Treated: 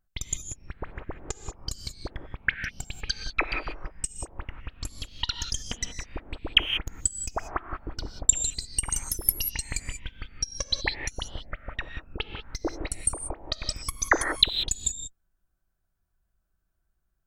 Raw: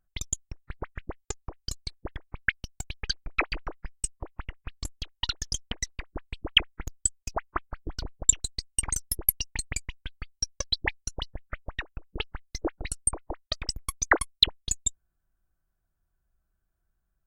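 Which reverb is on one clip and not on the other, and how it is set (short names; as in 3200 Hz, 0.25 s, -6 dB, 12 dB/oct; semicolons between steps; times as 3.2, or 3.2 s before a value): non-linear reverb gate 0.21 s rising, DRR 6 dB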